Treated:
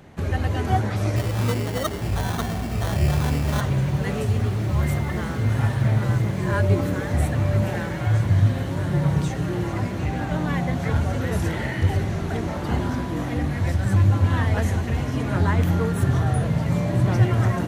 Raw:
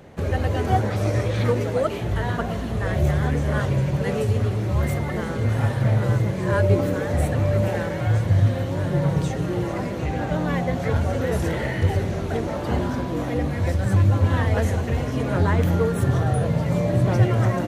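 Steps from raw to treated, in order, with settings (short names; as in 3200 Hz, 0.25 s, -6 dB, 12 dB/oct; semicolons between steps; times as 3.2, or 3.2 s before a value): bell 510 Hz -7.5 dB 0.61 oct; 1.16–3.61 sample-rate reducer 2500 Hz, jitter 0%; diffused feedback echo 1.713 s, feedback 63%, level -13 dB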